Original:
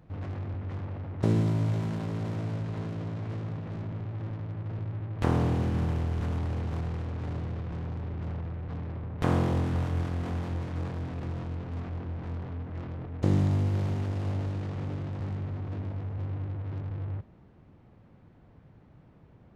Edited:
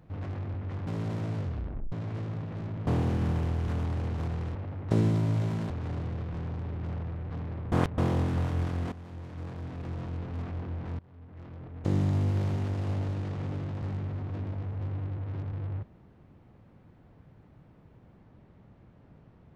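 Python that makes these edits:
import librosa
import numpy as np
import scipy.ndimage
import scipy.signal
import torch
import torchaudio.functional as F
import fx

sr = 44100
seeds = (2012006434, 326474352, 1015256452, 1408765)

y = fx.edit(x, sr, fx.move(start_s=0.87, length_s=1.15, to_s=7.08),
    fx.tape_stop(start_s=2.52, length_s=0.55),
    fx.cut(start_s=4.02, length_s=1.38),
    fx.reverse_span(start_s=9.1, length_s=0.26),
    fx.fade_in_from(start_s=10.3, length_s=1.29, floor_db=-14.5),
    fx.fade_in_from(start_s=12.37, length_s=1.31, floor_db=-23.0), tone=tone)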